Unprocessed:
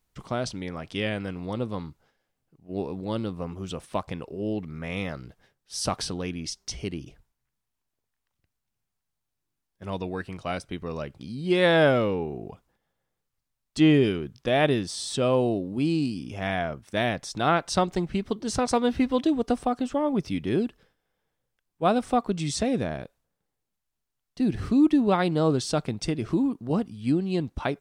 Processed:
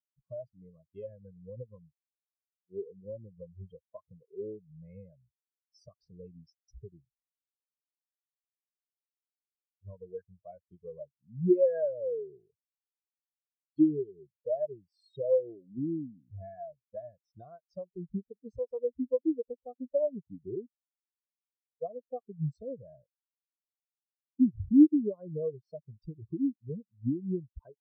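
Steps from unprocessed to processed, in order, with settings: comb 1.9 ms, depth 41%; compression 10:1, threshold -29 dBFS, peak gain reduction 15 dB; spectral contrast expander 4:1; trim +7 dB

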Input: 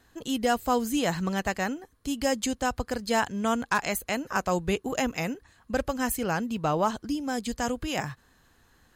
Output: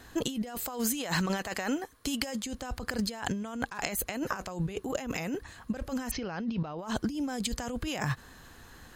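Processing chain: 0.55–2.43 s: bass shelf 290 Hz -10.5 dB; 6.11–6.79 s: steep low-pass 5.8 kHz 72 dB/octave; compressor with a negative ratio -37 dBFS, ratio -1; trim +3 dB

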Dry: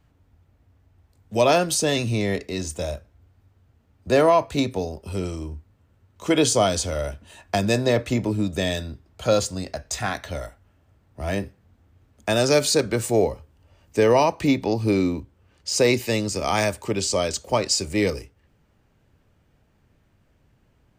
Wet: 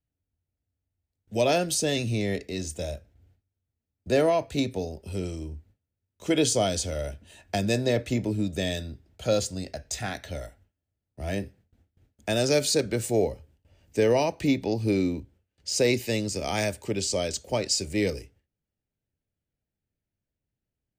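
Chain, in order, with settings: gate with hold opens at -48 dBFS; peaking EQ 1.1 kHz -11.5 dB 0.65 oct; trim -3.5 dB

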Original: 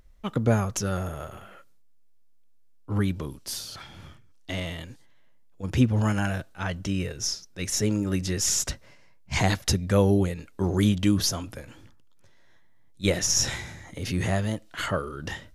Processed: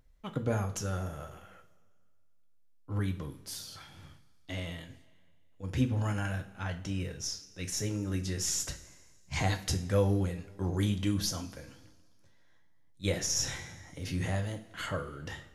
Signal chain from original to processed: two-slope reverb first 0.36 s, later 1.9 s, from -18 dB, DRR 5 dB; trim -8.5 dB

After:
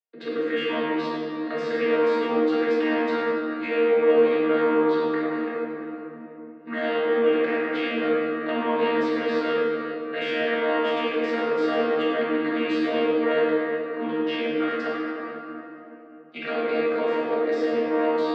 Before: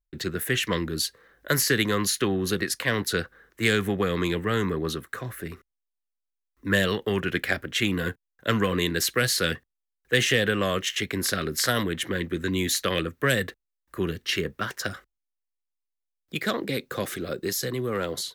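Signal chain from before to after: vocoder on a held chord bare fifth, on D#3; high-pass 360 Hz 24 dB/octave; treble shelf 2.6 kHz +10.5 dB; peak limiter -24 dBFS, peak gain reduction 11 dB; distance through air 400 m; reverberation RT60 3.5 s, pre-delay 5 ms, DRR -8 dB; trim +3.5 dB

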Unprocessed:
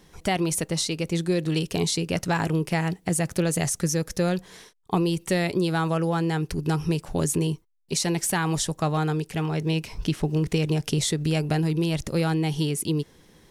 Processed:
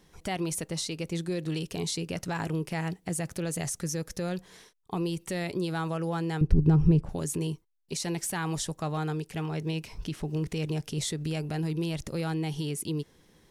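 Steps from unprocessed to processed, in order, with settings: peak limiter -16 dBFS, peak gain reduction 5.5 dB; 6.41–7.09 s: tilt EQ -4.5 dB/octave; trim -6 dB

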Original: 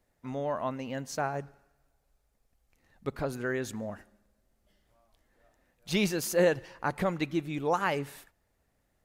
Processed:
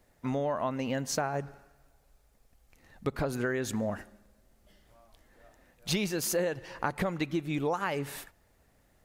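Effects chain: compression 8:1, threshold -35 dBFS, peak gain reduction 15.5 dB; trim +8 dB

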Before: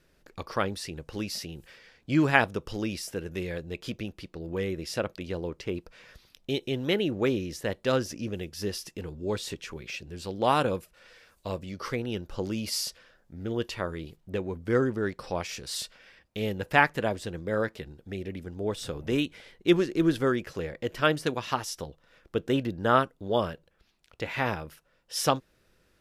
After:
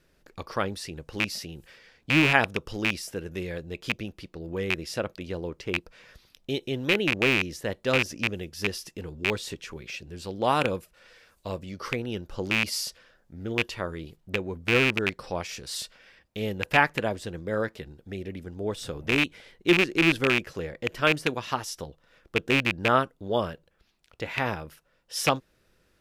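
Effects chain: rattle on loud lows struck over -32 dBFS, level -10 dBFS

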